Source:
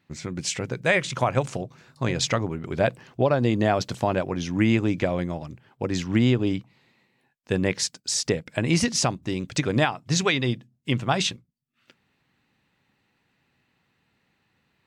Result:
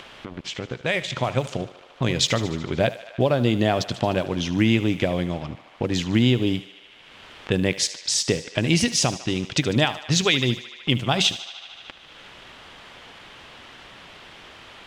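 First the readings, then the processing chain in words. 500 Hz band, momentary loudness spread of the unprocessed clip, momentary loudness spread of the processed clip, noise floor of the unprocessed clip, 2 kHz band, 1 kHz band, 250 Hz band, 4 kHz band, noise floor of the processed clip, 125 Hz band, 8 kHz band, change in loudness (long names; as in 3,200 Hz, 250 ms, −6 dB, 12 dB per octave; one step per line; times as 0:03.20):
+0.5 dB, 9 LU, 14 LU, −71 dBFS, +1.0 dB, −1.0 dB, +1.5 dB, +6.0 dB, −48 dBFS, +1.5 dB, +2.0 dB, +2.0 dB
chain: fade in at the beginning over 1.68 s
dead-zone distortion −46.5 dBFS
in parallel at +2 dB: downward compressor, threshold −33 dBFS, peak gain reduction 16 dB
on the sum: bit-depth reduction 10 bits, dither triangular
parametric band 3,200 Hz +7.5 dB 0.54 octaves
feedback echo with a high-pass in the loop 75 ms, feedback 71%, high-pass 470 Hz, level −14.5 dB
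dynamic equaliser 1,200 Hz, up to −4 dB, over −34 dBFS, Q 1
low-pass that shuts in the quiet parts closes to 2,200 Hz, open at −18 dBFS
upward compression, threshold −25 dBFS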